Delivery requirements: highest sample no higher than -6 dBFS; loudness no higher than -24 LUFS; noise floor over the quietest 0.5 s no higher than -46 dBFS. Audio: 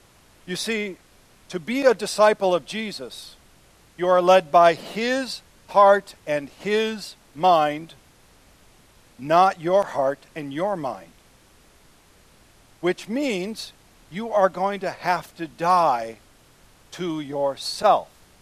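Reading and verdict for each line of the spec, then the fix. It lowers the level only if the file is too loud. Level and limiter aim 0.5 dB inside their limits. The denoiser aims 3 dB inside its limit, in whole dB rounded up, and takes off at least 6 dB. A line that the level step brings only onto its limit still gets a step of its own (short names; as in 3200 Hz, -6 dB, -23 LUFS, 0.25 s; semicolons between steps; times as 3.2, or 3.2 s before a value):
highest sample -4.5 dBFS: fail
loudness -22.0 LUFS: fail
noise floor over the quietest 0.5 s -54 dBFS: OK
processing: gain -2.5 dB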